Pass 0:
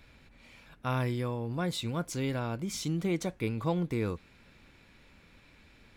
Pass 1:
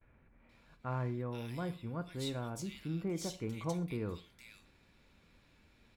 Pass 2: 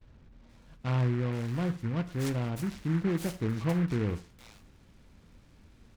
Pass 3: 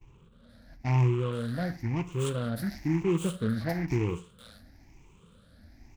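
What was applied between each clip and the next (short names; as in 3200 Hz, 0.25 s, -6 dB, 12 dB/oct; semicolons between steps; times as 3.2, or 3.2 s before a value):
gate with hold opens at -50 dBFS; bands offset in time lows, highs 0.48 s, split 2100 Hz; non-linear reverb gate 0.15 s falling, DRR 10.5 dB; gain -7 dB
low shelf 360 Hz +10 dB; noise-modulated delay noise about 1400 Hz, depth 0.087 ms; gain +1.5 dB
moving spectral ripple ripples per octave 0.71, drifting +1 Hz, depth 16 dB; gain -1 dB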